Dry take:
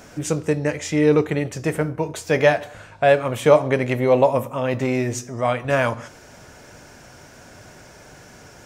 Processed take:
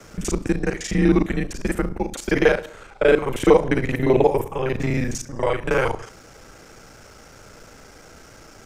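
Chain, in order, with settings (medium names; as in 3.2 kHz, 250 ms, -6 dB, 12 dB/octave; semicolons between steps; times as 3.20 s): time reversed locally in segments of 35 ms; frequency shift -120 Hz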